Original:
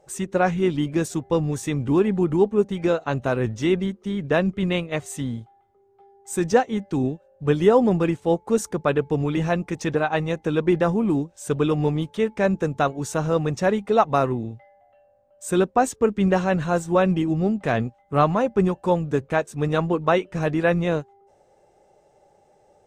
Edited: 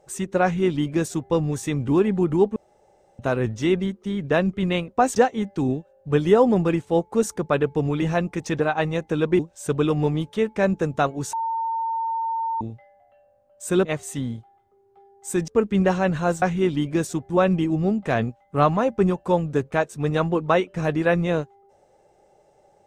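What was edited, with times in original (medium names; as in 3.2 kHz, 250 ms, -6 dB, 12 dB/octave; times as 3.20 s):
0.43–1.31 s: copy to 16.88 s
2.56–3.19 s: room tone
4.88–6.51 s: swap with 15.66–15.94 s
10.74–11.20 s: delete
13.14–14.42 s: bleep 907 Hz -22.5 dBFS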